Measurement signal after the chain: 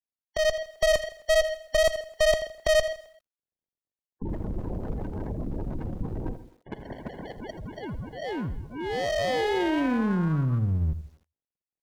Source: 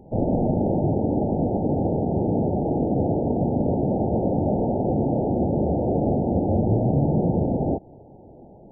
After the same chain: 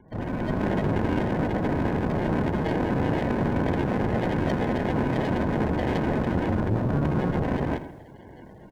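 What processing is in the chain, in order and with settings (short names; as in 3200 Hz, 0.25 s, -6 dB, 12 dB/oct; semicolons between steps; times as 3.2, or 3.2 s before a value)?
median filter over 41 samples; sample-and-hold 35×; echo 0.131 s -17.5 dB; spectral gate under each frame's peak -20 dB strong; AGC gain up to 8 dB; one-sided clip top -25 dBFS, bottom -8 dBFS; speakerphone echo 0.26 s, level -23 dB; vibrato 3.9 Hz 21 cents; lo-fi delay 81 ms, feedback 35%, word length 8-bit, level -14 dB; gain -6 dB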